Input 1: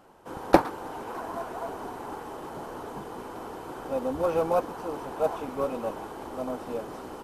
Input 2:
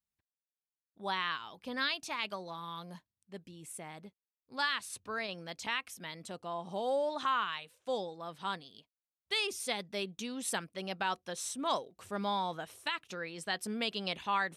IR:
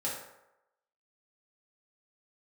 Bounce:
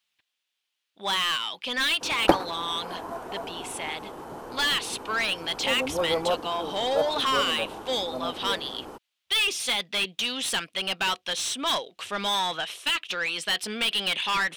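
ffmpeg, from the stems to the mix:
-filter_complex "[0:a]adelay=1750,volume=-1dB[link_01];[1:a]equalizer=frequency=3100:width_type=o:width=1.2:gain=13.5,asplit=2[link_02][link_03];[link_03]highpass=frequency=720:poles=1,volume=25dB,asoftclip=type=tanh:threshold=-9.5dB[link_04];[link_02][link_04]amix=inputs=2:normalize=0,lowpass=frequency=5800:poles=1,volume=-6dB,volume=-7dB[link_05];[link_01][link_05]amix=inputs=2:normalize=0"

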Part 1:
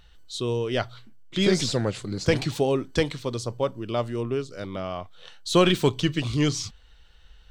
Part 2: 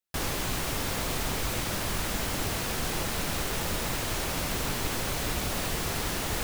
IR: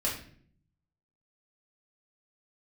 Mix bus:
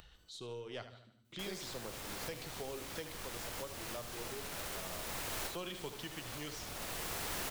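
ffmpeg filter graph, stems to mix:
-filter_complex "[0:a]highpass=frequency=59:poles=1,volume=-17dB,asplit=4[link_01][link_02][link_03][link_04];[link_02]volume=-20.5dB[link_05];[link_03]volume=-11dB[link_06];[1:a]adelay=1250,volume=2dB[link_07];[link_04]apad=whole_len=339054[link_08];[link_07][link_08]sidechaincompress=threshold=-55dB:ratio=8:attack=28:release=696[link_09];[2:a]atrim=start_sample=2205[link_10];[link_05][link_10]afir=irnorm=-1:irlink=0[link_11];[link_06]aecho=0:1:76|152|228|304|380:1|0.37|0.137|0.0507|0.0187[link_12];[link_01][link_09][link_11][link_12]amix=inputs=4:normalize=0,acrossover=split=400|3400|7700[link_13][link_14][link_15][link_16];[link_13]acompressor=threshold=-49dB:ratio=4[link_17];[link_14]acompressor=threshold=-43dB:ratio=4[link_18];[link_15]acompressor=threshold=-50dB:ratio=4[link_19];[link_16]acompressor=threshold=-43dB:ratio=4[link_20];[link_17][link_18][link_19][link_20]amix=inputs=4:normalize=0,aeval=exprs='0.0473*(cos(1*acos(clip(val(0)/0.0473,-1,1)))-cos(1*PI/2))+0.00211*(cos(6*acos(clip(val(0)/0.0473,-1,1)))-cos(6*PI/2))':channel_layout=same,acompressor=mode=upward:threshold=-47dB:ratio=2.5"

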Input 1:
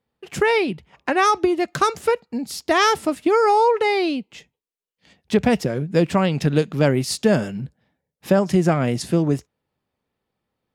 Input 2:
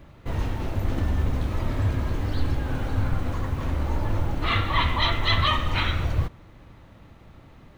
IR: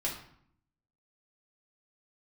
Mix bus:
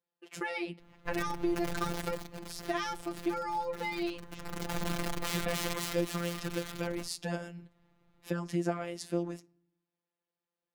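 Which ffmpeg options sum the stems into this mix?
-filter_complex "[0:a]highpass=240,volume=-10dB,asplit=2[link_01][link_02];[link_02]volume=-24dB[link_03];[1:a]aeval=exprs='(mod(8.41*val(0)+1,2)-1)/8.41':channel_layout=same,adelay=800,volume=5.5dB,afade=type=out:start_time=1.91:duration=0.39:silence=0.281838,afade=type=in:start_time=4.24:duration=0.57:silence=0.237137,afade=type=out:start_time=5.67:duration=0.39:silence=0.316228[link_04];[2:a]atrim=start_sample=2205[link_05];[link_03][link_05]afir=irnorm=-1:irlink=0[link_06];[link_01][link_04][link_06]amix=inputs=3:normalize=0,acrossover=split=370[link_07][link_08];[link_08]acompressor=threshold=-28dB:ratio=6[link_09];[link_07][link_09]amix=inputs=2:normalize=0,afftfilt=real='hypot(re,im)*cos(PI*b)':imag='0':win_size=1024:overlap=0.75"

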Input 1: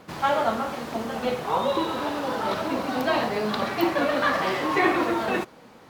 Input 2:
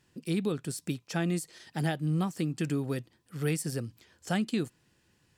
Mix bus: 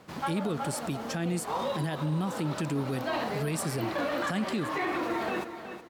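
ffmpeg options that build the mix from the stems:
ffmpeg -i stem1.wav -i stem2.wav -filter_complex "[0:a]volume=-5.5dB,asplit=2[link_01][link_02];[link_02]volume=-11.5dB[link_03];[1:a]volume=2dB,asplit=2[link_04][link_05];[link_05]apad=whole_len=259854[link_06];[link_01][link_06]sidechaincompress=threshold=-34dB:ratio=3:attack=7.5:release=186[link_07];[link_03]aecho=0:1:370|740|1110|1480:1|0.27|0.0729|0.0197[link_08];[link_07][link_04][link_08]amix=inputs=3:normalize=0,alimiter=limit=-22dB:level=0:latency=1:release=26" out.wav

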